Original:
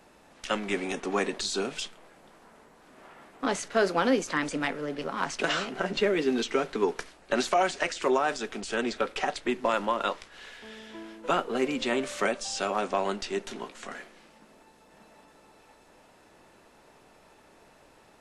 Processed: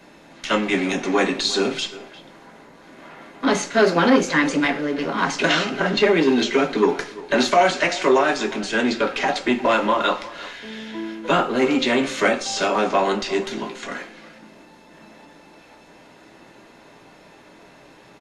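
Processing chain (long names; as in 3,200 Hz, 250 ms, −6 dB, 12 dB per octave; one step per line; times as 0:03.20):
far-end echo of a speakerphone 350 ms, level −17 dB
convolution reverb, pre-delay 3 ms, DRR 1 dB
saturating transformer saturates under 650 Hz
level +2.5 dB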